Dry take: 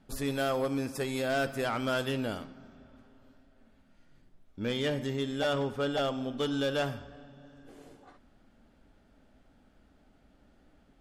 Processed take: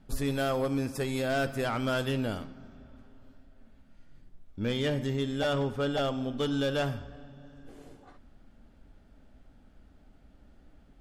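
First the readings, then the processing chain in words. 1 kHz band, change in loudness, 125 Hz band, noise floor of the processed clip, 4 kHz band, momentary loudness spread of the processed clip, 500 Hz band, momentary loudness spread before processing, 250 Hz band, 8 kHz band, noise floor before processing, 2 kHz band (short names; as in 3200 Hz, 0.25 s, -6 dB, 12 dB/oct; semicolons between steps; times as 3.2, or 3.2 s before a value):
0.0 dB, +1.0 dB, +4.5 dB, -59 dBFS, 0.0 dB, 7 LU, +0.5 dB, 7 LU, +2.0 dB, 0.0 dB, -64 dBFS, 0.0 dB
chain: low shelf 130 Hz +9.5 dB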